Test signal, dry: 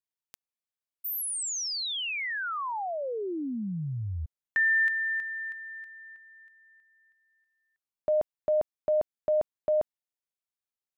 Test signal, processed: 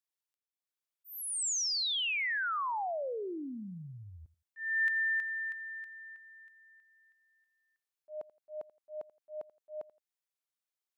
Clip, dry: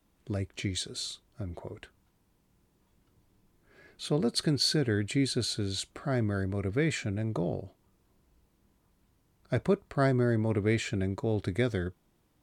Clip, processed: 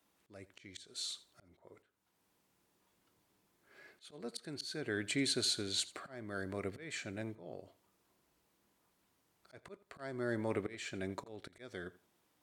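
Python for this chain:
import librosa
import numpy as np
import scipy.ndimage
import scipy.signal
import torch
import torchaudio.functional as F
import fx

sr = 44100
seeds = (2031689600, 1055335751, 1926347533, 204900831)

y = fx.highpass(x, sr, hz=600.0, slope=6)
y = fx.auto_swell(y, sr, attack_ms=429.0)
y = fx.echo_feedback(y, sr, ms=84, feedback_pct=23, wet_db=-19.0)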